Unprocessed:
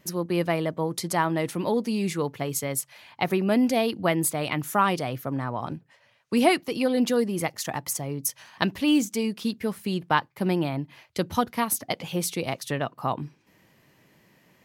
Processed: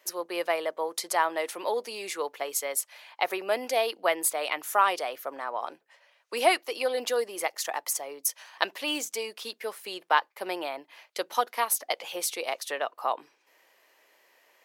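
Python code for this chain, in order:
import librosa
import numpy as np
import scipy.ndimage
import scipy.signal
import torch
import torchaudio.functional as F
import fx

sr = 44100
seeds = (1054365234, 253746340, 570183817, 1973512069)

y = scipy.signal.sosfilt(scipy.signal.butter(4, 470.0, 'highpass', fs=sr, output='sos'), x)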